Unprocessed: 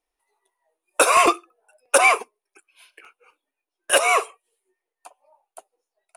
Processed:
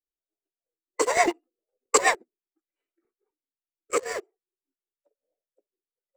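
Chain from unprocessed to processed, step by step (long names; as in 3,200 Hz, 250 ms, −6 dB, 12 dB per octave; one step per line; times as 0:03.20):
adaptive Wiener filter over 41 samples
formants moved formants −4 semitones
rotating-speaker cabinet horn 8 Hz, later 0.6 Hz, at 0:02.46
in parallel at −9 dB: centre clipping without the shift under −24 dBFS
on the sum: expander for the loud parts 1.5 to 1, over −33 dBFS
level −3 dB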